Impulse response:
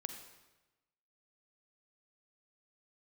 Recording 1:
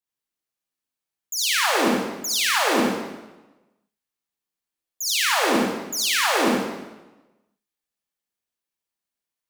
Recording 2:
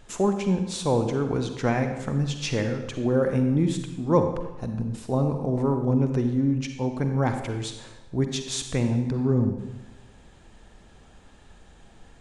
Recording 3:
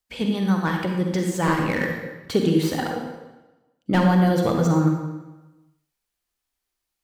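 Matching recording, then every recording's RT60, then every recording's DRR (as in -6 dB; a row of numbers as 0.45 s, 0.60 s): 2; 1.1 s, 1.1 s, 1.1 s; -4.5 dB, 6.0 dB, 1.5 dB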